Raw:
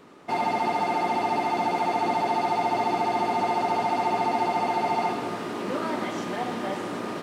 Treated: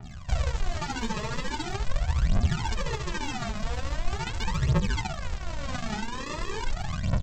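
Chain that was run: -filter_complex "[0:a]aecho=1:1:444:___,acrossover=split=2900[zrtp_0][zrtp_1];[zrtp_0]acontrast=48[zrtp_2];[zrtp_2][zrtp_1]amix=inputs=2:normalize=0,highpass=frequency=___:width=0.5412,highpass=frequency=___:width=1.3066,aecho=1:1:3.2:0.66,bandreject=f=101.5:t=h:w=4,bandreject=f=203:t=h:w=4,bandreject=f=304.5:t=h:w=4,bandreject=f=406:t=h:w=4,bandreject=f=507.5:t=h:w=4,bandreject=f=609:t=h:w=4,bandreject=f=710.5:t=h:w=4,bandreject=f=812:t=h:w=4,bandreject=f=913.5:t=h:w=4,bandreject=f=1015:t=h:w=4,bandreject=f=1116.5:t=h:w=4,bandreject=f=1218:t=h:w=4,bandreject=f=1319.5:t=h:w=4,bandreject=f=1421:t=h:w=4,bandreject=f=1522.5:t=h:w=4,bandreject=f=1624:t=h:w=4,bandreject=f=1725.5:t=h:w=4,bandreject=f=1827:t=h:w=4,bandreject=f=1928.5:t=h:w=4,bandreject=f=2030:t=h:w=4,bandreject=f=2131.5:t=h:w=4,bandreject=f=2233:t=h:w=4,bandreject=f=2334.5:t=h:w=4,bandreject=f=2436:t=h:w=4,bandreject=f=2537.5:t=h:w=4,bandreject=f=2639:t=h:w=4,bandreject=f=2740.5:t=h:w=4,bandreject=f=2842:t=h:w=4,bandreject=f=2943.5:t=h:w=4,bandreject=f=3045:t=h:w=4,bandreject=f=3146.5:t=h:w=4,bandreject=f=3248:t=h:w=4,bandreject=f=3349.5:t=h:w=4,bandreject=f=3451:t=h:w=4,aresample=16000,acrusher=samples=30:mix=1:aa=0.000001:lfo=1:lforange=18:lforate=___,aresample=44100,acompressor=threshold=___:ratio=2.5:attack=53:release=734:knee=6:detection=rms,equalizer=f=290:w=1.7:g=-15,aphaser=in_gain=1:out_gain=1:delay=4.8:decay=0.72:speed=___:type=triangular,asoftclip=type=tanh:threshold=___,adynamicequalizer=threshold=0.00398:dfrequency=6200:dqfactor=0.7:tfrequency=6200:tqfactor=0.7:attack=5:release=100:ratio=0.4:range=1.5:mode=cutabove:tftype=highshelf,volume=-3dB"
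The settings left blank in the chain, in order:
0.0708, 46, 46, 0.59, -27dB, 0.42, -9dB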